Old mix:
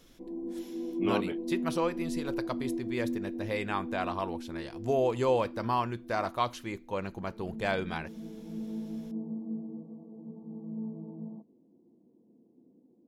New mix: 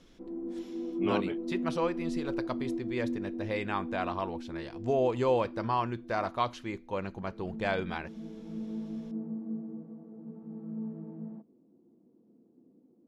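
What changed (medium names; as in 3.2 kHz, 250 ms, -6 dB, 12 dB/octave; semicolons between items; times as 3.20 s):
background: remove steep low-pass 1.1 kHz 96 dB/octave; master: add distance through air 70 m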